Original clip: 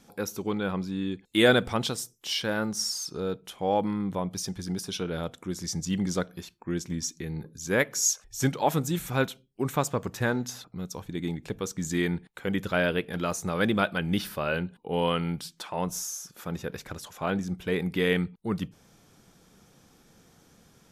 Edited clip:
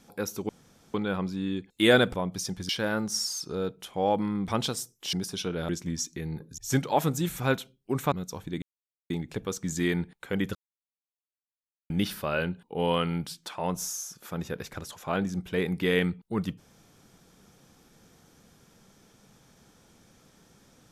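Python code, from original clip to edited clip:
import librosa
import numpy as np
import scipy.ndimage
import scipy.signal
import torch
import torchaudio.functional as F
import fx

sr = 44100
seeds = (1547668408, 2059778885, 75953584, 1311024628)

y = fx.edit(x, sr, fx.insert_room_tone(at_s=0.49, length_s=0.45),
    fx.swap(start_s=1.69, length_s=0.65, other_s=4.13, other_length_s=0.55),
    fx.cut(start_s=5.24, length_s=1.49),
    fx.cut(start_s=7.62, length_s=0.66),
    fx.cut(start_s=9.82, length_s=0.92),
    fx.insert_silence(at_s=11.24, length_s=0.48),
    fx.silence(start_s=12.69, length_s=1.35), tone=tone)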